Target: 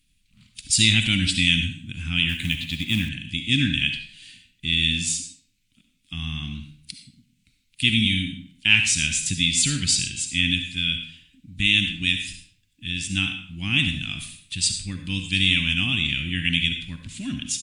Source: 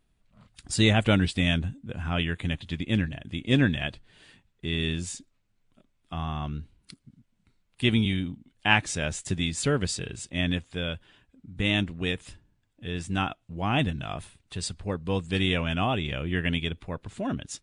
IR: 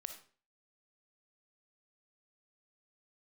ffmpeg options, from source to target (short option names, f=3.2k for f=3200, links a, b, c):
-filter_complex "[0:a]asplit=2[a][b];[b]alimiter=limit=-16.5dB:level=0:latency=1,volume=-1dB[c];[a][c]amix=inputs=2:normalize=0,firequalizer=gain_entry='entry(280,0);entry(450,-27);entry(2400,10);entry(6300,11)':delay=0.05:min_phase=1[d];[1:a]atrim=start_sample=2205,asetrate=35280,aresample=44100[e];[d][e]afir=irnorm=-1:irlink=0,asettb=1/sr,asplit=3[f][g][h];[f]atrim=end=2.294[i];[g]atrim=start=2.29:end=3.09,asetpts=PTS-STARTPTS,afade=t=in:d=0.004:c=qsin,afade=t=out:st=0.796:d=0.004:c=qsin,acrusher=bits=5:mode=log:mix=0:aa=0.000001[j];[h]atrim=start=3.086[k];[i][j]acrossfade=d=0.004:c1=hsin:c2=qsin[l];[l][k]acrossfade=d=0.004:c1=qsin:c2=hsin,volume=-1.5dB"